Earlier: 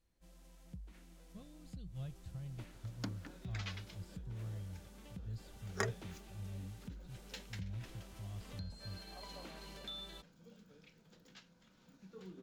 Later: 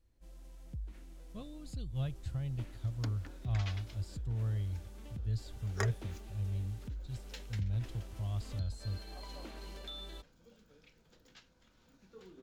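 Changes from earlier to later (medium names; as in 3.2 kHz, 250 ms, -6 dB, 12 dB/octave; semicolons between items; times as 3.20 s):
speech +10.5 dB; first sound: add bass shelf 380 Hz +9.5 dB; master: add peaking EQ 180 Hz -12.5 dB 0.29 oct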